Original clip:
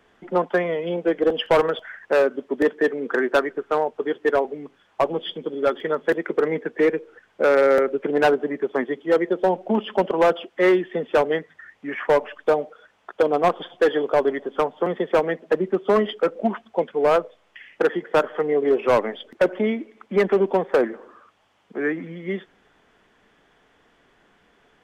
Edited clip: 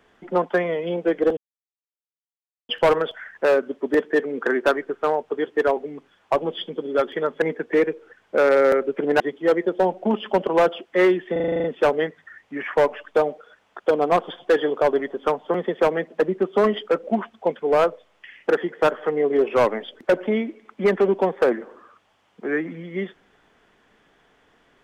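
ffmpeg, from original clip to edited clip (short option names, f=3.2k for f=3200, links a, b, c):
-filter_complex "[0:a]asplit=12[a][b][c][d][e][f][g][h][i][j][k][l];[a]atrim=end=1.37,asetpts=PTS-STARTPTS,afade=t=out:st=1.366:d=0.004:c=hsin,apad=pad_dur=1.32[m];[b]atrim=start=1.37:end=6.102,asetpts=PTS-STARTPTS,afade=t=in:d=0.004:c=hsin[n];[c]atrim=start=6.478:end=8.262[o];[d]atrim=start=8.838:end=11.002[p];[e]atrim=start=10.958:end=11.002[q];[f]atrim=start=10.958:end=11.002[r];[g]atrim=start=10.958:end=11.002[s];[h]atrim=start=10.958:end=11.002[t];[i]atrim=start=10.958:end=11.002[u];[j]atrim=start=10.958:end=11.002[v];[k]atrim=start=10.958:end=11.002[w];[l]atrim=start=10.958[x];[m][n]concat=n=2:v=0:a=1[y];[y][o]acrossfade=d=0.004:c1=hsin:c2=hsin[z];[z][p]acrossfade=d=0.004:c1=hsin:c2=hsin[aa];[aa][q]acrossfade=d=0.004:c1=hsin:c2=hsin[ab];[ab][r]acrossfade=d=0.004:c1=hsin:c2=hsin[ac];[ac][s]acrossfade=d=0.004:c1=hsin:c2=hsin[ad];[ad][t]acrossfade=d=0.004:c1=hsin:c2=hsin[ae];[ae][u]acrossfade=d=0.004:c1=hsin:c2=hsin[af];[af][v]acrossfade=d=0.004:c1=hsin:c2=hsin[ag];[ag][w]acrossfade=d=0.004:c1=hsin:c2=hsin[ah];[ah][x]acrossfade=d=0.004:c1=hsin:c2=hsin"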